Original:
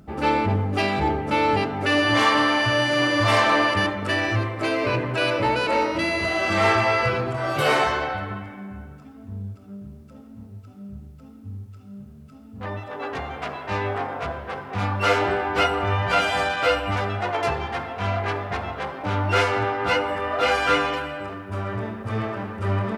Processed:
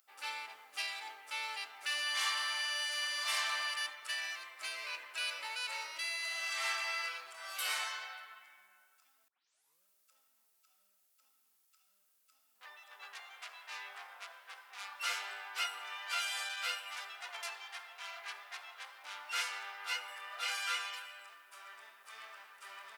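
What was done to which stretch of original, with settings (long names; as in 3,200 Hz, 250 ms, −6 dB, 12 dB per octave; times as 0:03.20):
0:09.28: tape start 0.57 s
whole clip: high-pass filter 890 Hz 12 dB per octave; first difference; level −2.5 dB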